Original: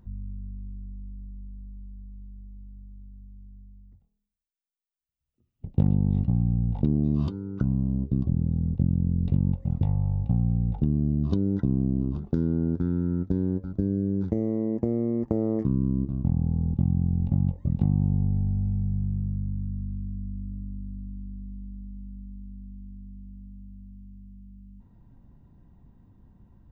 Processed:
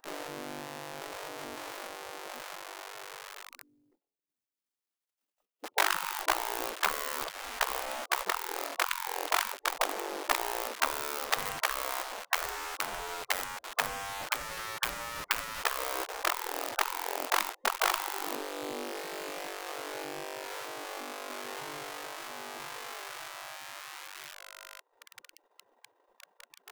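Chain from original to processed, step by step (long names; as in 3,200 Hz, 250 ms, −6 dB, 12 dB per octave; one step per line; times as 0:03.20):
low-shelf EQ 420 Hz +3 dB
feedback echo with a band-pass in the loop 84 ms, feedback 42%, band-pass 490 Hz, level −20 dB
on a send at −13 dB: convolution reverb, pre-delay 3 ms
on the sum: transient designer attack +7 dB, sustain −11 dB
in parallel at −6 dB: log-companded quantiser 2 bits
on the sum: harmonic generator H 2 −27 dB, 4 −11 dB, 5 −18 dB, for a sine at −1 dBFS
gate on every frequency bin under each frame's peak −25 dB weak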